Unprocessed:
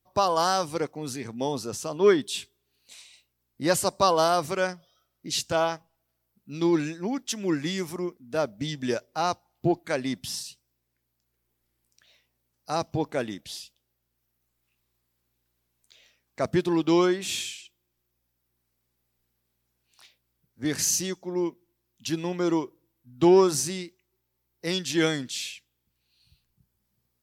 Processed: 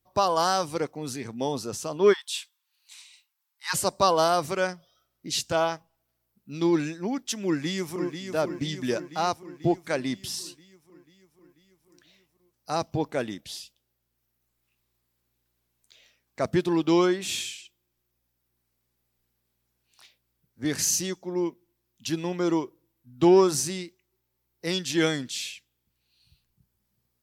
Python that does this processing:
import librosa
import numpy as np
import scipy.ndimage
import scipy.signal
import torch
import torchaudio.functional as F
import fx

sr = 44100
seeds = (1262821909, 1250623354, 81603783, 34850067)

y = fx.brickwall_highpass(x, sr, low_hz=810.0, at=(2.12, 3.73), fade=0.02)
y = fx.echo_throw(y, sr, start_s=7.46, length_s=0.73, ms=490, feedback_pct=65, wet_db=-7.5)